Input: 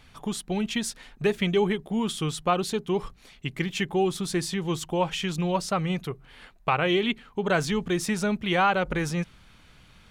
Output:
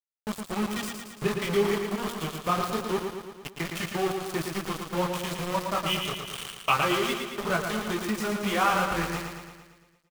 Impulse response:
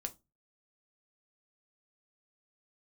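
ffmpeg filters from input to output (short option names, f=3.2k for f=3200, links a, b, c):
-filter_complex "[0:a]aeval=exprs='val(0)+0.5*0.0168*sgn(val(0))':c=same,flanger=delay=0.2:depth=4.9:regen=-40:speed=1.6:shape=triangular,asettb=1/sr,asplit=3[a][b][c];[a]atrim=end=5.864[d];[b]atrim=start=5.86:end=6.72,asetpts=PTS-STARTPTS,afade=t=in:d=0.004:c=qsin,afade=t=out:st=0.856:d=0.004:c=qsin,lowpass=f=3k:t=q:w=7.9[e];[c]atrim=start=6.716[f];[d][e]acrossfade=d=0.004:c1=hsin:c2=qsin[g];[g][f]acrossfade=d=0.004:c1=qsin:c2=hsin,flanger=delay=17.5:depth=7.6:speed=0.26,asettb=1/sr,asplit=3[h][i][j];[h]atrim=end=0.774[k];[i]atrim=start=0.77:end=1.28,asetpts=PTS-STARTPTS,afade=t=in:d=0.004:c=qsin,afade=t=out:st=0.506:d=0.004:c=qsin,adynamicequalizer=threshold=0.00282:dfrequency=150:dqfactor=1.3:tfrequency=150:tqfactor=1.3:attack=5:release=100:ratio=0.375:range=3.5:mode=boostabove:tftype=bell[l];[j]atrim=start=1.276[m];[k][l]acrossfade=d=0.004:c1=hsin:c2=qsin[n];[n][m]acrossfade=d=0.004:c1=qsin:c2=hsin,acontrast=56,aeval=exprs='val(0)*gte(abs(val(0)),0.0531)':c=same,equalizer=f=1.2k:w=3.6:g=7,aecho=1:1:113|226|339|452|565|678|791|904:0.531|0.313|0.185|0.109|0.0643|0.038|0.0224|0.0132,asplit=3[o][p][q];[o]afade=t=out:st=7.56:d=0.02[r];[p]acompressor=threshold=-20dB:ratio=6,afade=t=in:st=7.56:d=0.02,afade=t=out:st=8.43:d=0.02[s];[q]afade=t=in:st=8.43:d=0.02[t];[r][s][t]amix=inputs=3:normalize=0,volume=-4dB"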